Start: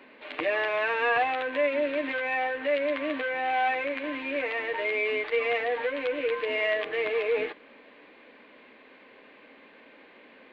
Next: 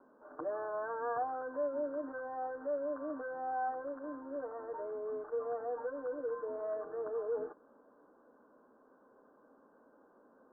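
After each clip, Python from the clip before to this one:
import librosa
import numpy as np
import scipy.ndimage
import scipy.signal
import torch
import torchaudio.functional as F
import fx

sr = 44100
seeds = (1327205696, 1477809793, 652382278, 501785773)

y = scipy.signal.sosfilt(scipy.signal.butter(16, 1500.0, 'lowpass', fs=sr, output='sos'), x)
y = y * 10.0 ** (-9.0 / 20.0)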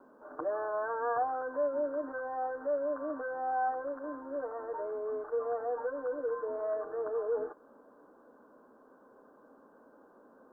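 y = fx.dynamic_eq(x, sr, hz=180.0, q=0.88, threshold_db=-56.0, ratio=4.0, max_db=-6)
y = y * 10.0 ** (5.0 / 20.0)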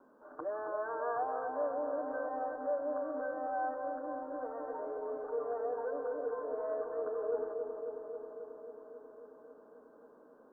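y = fx.echo_wet_lowpass(x, sr, ms=270, feedback_pct=75, hz=1100.0, wet_db=-5)
y = y * 10.0 ** (-4.5 / 20.0)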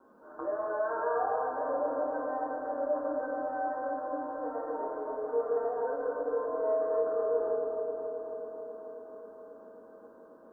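y = fx.rev_fdn(x, sr, rt60_s=1.6, lf_ratio=1.3, hf_ratio=0.75, size_ms=87.0, drr_db=-3.0)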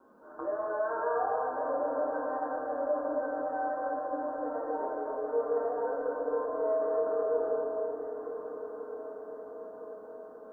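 y = fx.echo_diffused(x, sr, ms=1303, feedback_pct=52, wet_db=-10.0)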